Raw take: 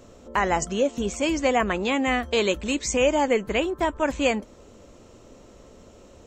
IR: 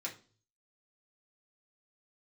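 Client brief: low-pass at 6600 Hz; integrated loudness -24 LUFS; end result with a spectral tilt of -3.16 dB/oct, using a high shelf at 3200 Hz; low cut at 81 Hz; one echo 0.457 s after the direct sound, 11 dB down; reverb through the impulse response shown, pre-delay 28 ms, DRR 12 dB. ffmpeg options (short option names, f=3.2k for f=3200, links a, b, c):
-filter_complex "[0:a]highpass=81,lowpass=6.6k,highshelf=f=3.2k:g=-5,aecho=1:1:457:0.282,asplit=2[a][b];[1:a]atrim=start_sample=2205,adelay=28[c];[b][c]afir=irnorm=-1:irlink=0,volume=-12.5dB[d];[a][d]amix=inputs=2:normalize=0,volume=0.5dB"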